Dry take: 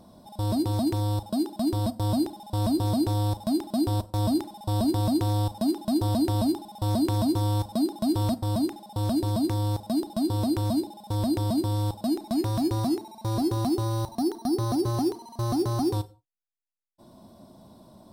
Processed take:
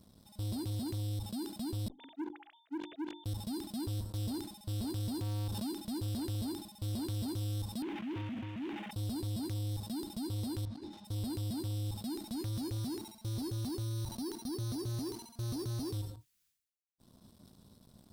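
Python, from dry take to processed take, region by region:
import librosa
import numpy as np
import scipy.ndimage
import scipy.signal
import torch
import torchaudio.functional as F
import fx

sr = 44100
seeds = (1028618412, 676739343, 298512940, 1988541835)

y = fx.chain(x, sr, fx.sine_speech(),
    fx.hum_notches(base_hz=50, count=7),
    fx.upward_expand(threshold_db=-31.0, expansion=2.5), at=(1.88, 3.26))
y = fx.chain(y, sr, fx.highpass(hz=41.0, slope=12),
    fx.pre_swell(db_per_s=38.0), at=(5.15, 5.73))
y = fx.chain(y, sr, fx.cvsd(bps=16000),
    fx.highpass(hz=250.0, slope=12),
    fx.sustainer(db_per_s=31.0), at=(7.82, 8.91))
y = fx.chain(y, sr, fx.lowpass(hz=3600.0, slope=12),
    fx.over_compress(threshold_db=-32.0, ratio=-0.5),
    fx.detune_double(cents=46), at=(10.65, 11.05))
y = fx.tone_stack(y, sr, knobs='6-0-2')
y = fx.leveller(y, sr, passes=3)
y = fx.sustainer(y, sr, db_per_s=83.0)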